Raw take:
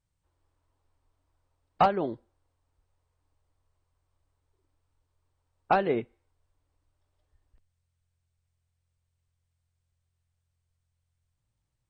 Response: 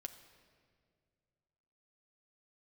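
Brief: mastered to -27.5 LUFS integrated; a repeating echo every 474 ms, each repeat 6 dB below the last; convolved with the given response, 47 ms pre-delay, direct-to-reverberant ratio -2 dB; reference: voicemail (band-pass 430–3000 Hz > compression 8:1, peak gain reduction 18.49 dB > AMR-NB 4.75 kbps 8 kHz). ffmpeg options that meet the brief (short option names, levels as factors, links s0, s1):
-filter_complex "[0:a]aecho=1:1:474|948|1422|1896|2370|2844:0.501|0.251|0.125|0.0626|0.0313|0.0157,asplit=2[s0][s1];[1:a]atrim=start_sample=2205,adelay=47[s2];[s1][s2]afir=irnorm=-1:irlink=0,volume=2[s3];[s0][s3]amix=inputs=2:normalize=0,highpass=430,lowpass=3000,acompressor=threshold=0.0224:ratio=8,volume=5.96" -ar 8000 -c:a libopencore_amrnb -b:a 4750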